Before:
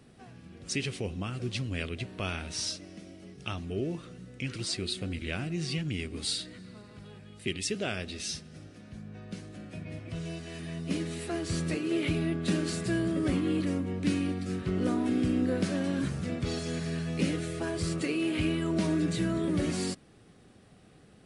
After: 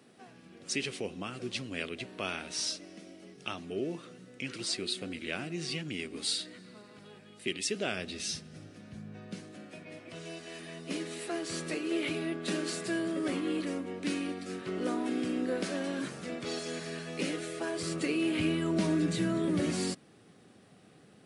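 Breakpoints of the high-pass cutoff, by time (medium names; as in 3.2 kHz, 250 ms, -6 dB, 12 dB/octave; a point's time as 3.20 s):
7.70 s 240 Hz
8.31 s 100 Hz
9.05 s 100 Hz
9.79 s 320 Hz
17.70 s 320 Hz
18.18 s 140 Hz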